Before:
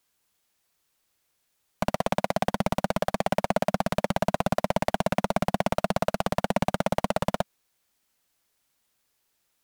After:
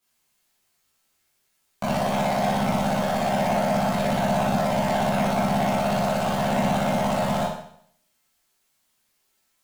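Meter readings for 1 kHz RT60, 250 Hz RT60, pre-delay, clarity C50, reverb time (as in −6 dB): 0.65 s, 0.65 s, 13 ms, 1.0 dB, 0.65 s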